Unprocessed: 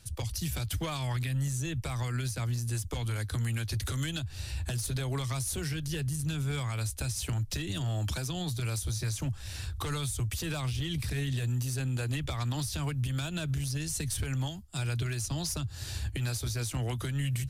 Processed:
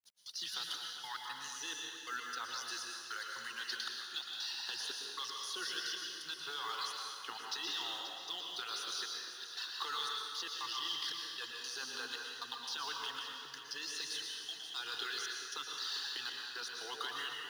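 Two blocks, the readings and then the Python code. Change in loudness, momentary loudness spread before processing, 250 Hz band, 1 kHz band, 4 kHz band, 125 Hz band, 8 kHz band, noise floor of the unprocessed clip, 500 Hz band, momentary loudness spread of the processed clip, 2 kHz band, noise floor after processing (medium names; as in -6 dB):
-6.5 dB, 3 LU, -22.5 dB, 0.0 dB, +2.5 dB, under -40 dB, -8.5 dB, -42 dBFS, -12.0 dB, 5 LU, -1.0 dB, -49 dBFS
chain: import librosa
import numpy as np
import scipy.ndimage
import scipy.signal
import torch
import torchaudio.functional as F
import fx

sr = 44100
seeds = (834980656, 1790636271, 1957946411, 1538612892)

p1 = fx.fade_in_head(x, sr, length_s=0.5)
p2 = scipy.signal.sosfilt(scipy.signal.butter(4, 7600.0, 'lowpass', fs=sr, output='sos'), p1)
p3 = fx.dereverb_blind(p2, sr, rt60_s=1.9)
p4 = scipy.signal.sosfilt(scipy.signal.butter(4, 540.0, 'highpass', fs=sr, output='sos'), p3)
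p5 = fx.peak_eq(p4, sr, hz=1600.0, db=-3.0, octaves=0.88)
p6 = fx.over_compress(p5, sr, threshold_db=-48.0, ratio=-1.0)
p7 = p5 + (p6 * 10.0 ** (3.0 / 20.0))
p8 = fx.fixed_phaser(p7, sr, hz=2300.0, stages=6)
p9 = fx.quant_companded(p8, sr, bits=6)
p10 = fx.step_gate(p9, sr, bpm=116, pattern='x.xxxx..', floor_db=-60.0, edge_ms=4.5)
p11 = p10 + fx.echo_split(p10, sr, split_hz=1800.0, low_ms=399, high_ms=532, feedback_pct=52, wet_db=-11.0, dry=0)
p12 = fx.rev_plate(p11, sr, seeds[0], rt60_s=1.5, hf_ratio=0.95, predelay_ms=100, drr_db=0.0)
y = p12 * 10.0 ** (-1.0 / 20.0)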